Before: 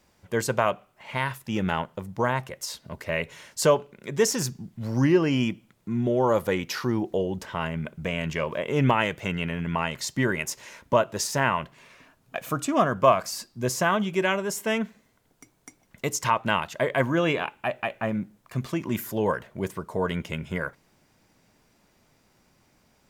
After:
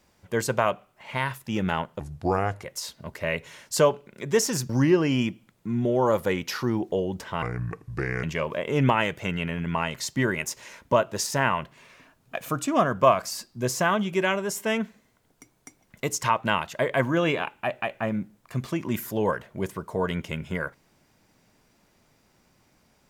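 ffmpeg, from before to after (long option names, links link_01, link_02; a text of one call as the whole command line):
ffmpeg -i in.wav -filter_complex "[0:a]asplit=6[link_01][link_02][link_03][link_04][link_05][link_06];[link_01]atrim=end=2.004[link_07];[link_02]atrim=start=2:end=2.48,asetpts=PTS-STARTPTS,asetrate=33957,aresample=44100[link_08];[link_03]atrim=start=2.476:end=4.552[link_09];[link_04]atrim=start=4.908:end=7.644[link_10];[link_05]atrim=start=7.64:end=8.24,asetpts=PTS-STARTPTS,asetrate=32634,aresample=44100[link_11];[link_06]atrim=start=8.236[link_12];[link_07][link_08]acrossfade=duration=0.004:curve1=hsin:curve2=hsin[link_13];[link_13][link_09]acrossfade=duration=0.004:curve1=hsin:curve2=hsin[link_14];[link_14][link_10]acrossfade=duration=0.004:curve1=hsin:curve2=hsin[link_15];[link_15][link_11]acrossfade=duration=0.004:curve1=hsin:curve2=hsin[link_16];[link_16][link_12]acrossfade=duration=0.004:curve1=hsin:curve2=hsin" out.wav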